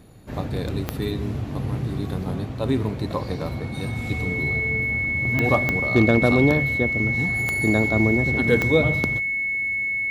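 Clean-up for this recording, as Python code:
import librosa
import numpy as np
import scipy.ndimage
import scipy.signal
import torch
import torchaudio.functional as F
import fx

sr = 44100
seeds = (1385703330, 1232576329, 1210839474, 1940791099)

y = fx.fix_declip(x, sr, threshold_db=-7.0)
y = fx.fix_declick_ar(y, sr, threshold=10.0)
y = fx.notch(y, sr, hz=2200.0, q=30.0)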